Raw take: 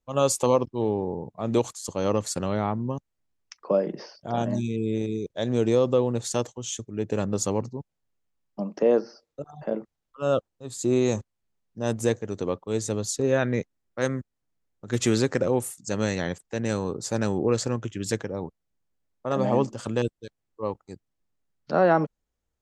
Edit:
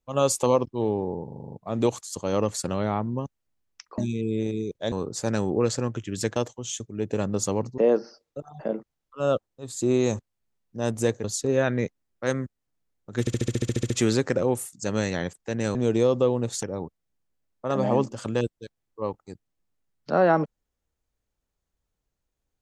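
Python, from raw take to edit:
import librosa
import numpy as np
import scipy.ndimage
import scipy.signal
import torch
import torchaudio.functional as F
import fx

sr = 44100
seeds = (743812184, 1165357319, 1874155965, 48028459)

y = fx.edit(x, sr, fx.stutter(start_s=1.25, slice_s=0.04, count=8),
    fx.cut(start_s=3.7, length_s=0.83),
    fx.swap(start_s=5.47, length_s=0.88, other_s=16.8, other_length_s=1.44),
    fx.cut(start_s=7.77, length_s=1.03),
    fx.cut(start_s=12.26, length_s=0.73),
    fx.stutter(start_s=14.95, slice_s=0.07, count=11), tone=tone)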